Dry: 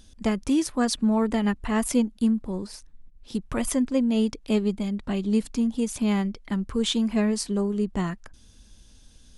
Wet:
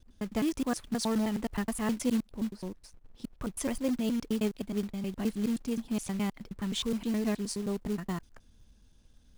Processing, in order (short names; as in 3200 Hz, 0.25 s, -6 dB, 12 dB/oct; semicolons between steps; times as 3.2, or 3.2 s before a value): slices in reverse order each 0.105 s, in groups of 2; short-mantissa float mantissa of 2-bit; mismatched tape noise reduction decoder only; gain -7 dB